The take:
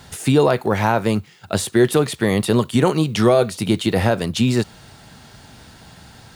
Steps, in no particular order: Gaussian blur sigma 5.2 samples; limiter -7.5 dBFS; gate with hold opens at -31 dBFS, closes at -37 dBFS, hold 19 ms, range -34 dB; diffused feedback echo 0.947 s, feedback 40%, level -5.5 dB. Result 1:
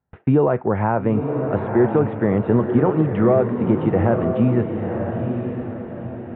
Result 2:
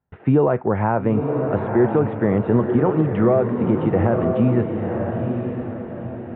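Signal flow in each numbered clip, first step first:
Gaussian blur > limiter > diffused feedback echo > gate with hold; diffused feedback echo > gate with hold > Gaussian blur > limiter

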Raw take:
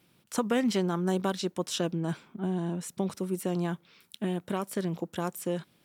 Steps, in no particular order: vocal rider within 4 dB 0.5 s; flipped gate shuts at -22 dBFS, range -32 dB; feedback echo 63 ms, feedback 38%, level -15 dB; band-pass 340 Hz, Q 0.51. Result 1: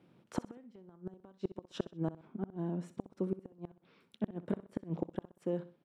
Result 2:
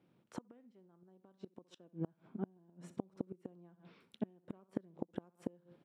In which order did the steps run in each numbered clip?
band-pass > flipped gate > vocal rider > feedback echo; feedback echo > flipped gate > vocal rider > band-pass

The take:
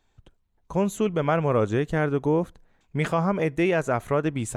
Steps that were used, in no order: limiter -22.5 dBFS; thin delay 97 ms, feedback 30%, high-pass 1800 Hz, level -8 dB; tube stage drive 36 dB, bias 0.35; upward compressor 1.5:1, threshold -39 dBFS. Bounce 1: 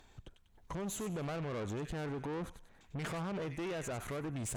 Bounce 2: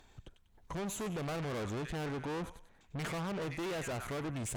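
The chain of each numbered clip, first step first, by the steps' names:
limiter > thin delay > upward compressor > tube stage; upward compressor > thin delay > tube stage > limiter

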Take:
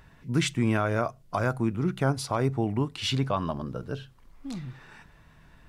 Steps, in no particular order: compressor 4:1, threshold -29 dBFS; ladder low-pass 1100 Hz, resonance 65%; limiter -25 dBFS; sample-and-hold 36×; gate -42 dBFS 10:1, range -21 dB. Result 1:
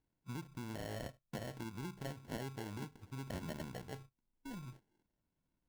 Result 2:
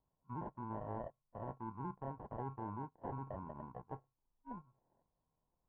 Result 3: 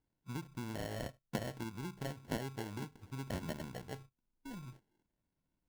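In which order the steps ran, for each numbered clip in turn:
compressor > gate > limiter > ladder low-pass > sample-and-hold; sample-and-hold > limiter > compressor > ladder low-pass > gate; compressor > gate > ladder low-pass > sample-and-hold > limiter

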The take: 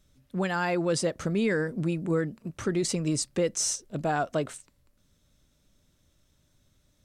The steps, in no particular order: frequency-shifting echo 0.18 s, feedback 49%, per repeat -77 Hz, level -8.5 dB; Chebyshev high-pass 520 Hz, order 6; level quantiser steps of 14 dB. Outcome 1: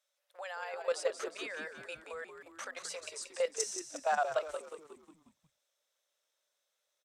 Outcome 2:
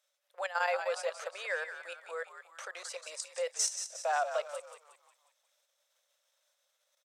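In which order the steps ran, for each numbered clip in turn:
Chebyshev high-pass > level quantiser > frequency-shifting echo; level quantiser > frequency-shifting echo > Chebyshev high-pass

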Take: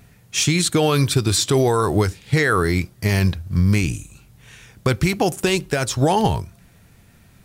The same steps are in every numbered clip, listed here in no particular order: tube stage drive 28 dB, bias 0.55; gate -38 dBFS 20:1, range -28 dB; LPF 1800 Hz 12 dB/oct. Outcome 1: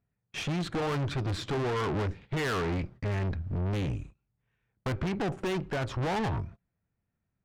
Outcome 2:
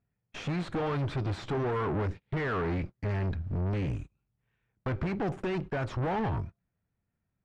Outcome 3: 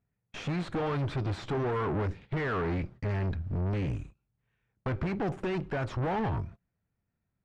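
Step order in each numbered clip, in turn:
gate > LPF > tube stage; tube stage > gate > LPF; gate > tube stage > LPF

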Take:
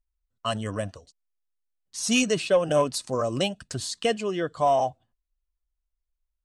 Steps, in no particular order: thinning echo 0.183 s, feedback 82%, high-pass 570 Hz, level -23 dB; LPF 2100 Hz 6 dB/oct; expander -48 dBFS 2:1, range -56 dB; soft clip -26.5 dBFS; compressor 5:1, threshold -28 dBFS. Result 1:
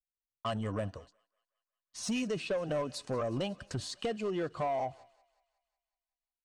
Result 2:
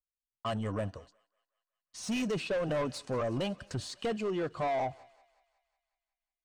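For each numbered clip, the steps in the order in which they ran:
LPF > compressor > soft clip > thinning echo > expander; soft clip > compressor > thinning echo > expander > LPF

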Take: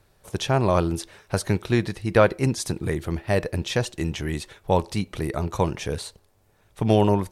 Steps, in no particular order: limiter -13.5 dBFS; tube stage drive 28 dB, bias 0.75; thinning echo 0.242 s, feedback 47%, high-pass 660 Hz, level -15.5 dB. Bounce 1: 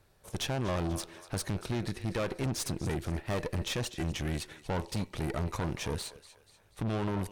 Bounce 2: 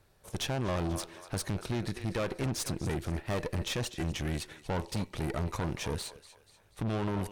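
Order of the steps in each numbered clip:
limiter > thinning echo > tube stage; thinning echo > limiter > tube stage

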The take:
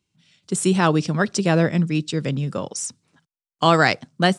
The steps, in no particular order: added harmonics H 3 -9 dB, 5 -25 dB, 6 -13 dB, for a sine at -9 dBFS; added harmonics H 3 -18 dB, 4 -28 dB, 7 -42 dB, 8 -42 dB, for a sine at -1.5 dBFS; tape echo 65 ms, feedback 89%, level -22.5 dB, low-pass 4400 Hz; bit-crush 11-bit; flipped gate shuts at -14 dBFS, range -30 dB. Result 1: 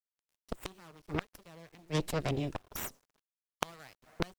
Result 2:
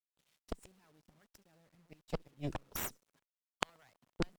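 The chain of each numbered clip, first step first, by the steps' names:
tape echo > first added harmonics > flipped gate > second added harmonics > bit-crush; flipped gate > tape echo > first added harmonics > bit-crush > second added harmonics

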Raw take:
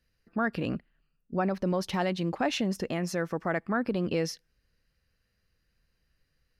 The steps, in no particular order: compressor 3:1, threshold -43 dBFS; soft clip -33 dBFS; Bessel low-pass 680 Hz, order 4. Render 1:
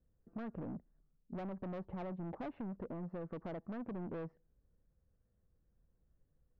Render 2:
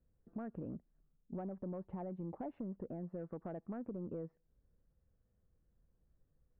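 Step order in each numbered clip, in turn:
Bessel low-pass > soft clip > compressor; Bessel low-pass > compressor > soft clip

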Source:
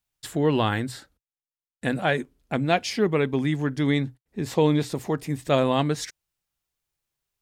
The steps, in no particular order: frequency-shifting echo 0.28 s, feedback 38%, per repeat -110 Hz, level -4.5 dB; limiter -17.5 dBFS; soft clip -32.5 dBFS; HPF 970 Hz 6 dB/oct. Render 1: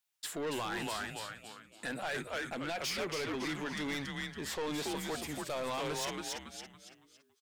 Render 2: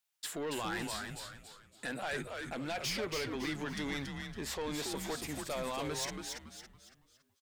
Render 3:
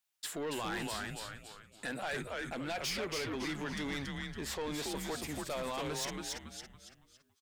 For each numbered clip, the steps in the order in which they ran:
frequency-shifting echo > HPF > limiter > soft clip; limiter > HPF > soft clip > frequency-shifting echo; limiter > HPF > frequency-shifting echo > soft clip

